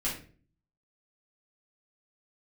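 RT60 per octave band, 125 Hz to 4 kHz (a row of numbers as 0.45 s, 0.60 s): 0.75 s, 0.65 s, 0.50 s, 0.35 s, 0.40 s, 0.30 s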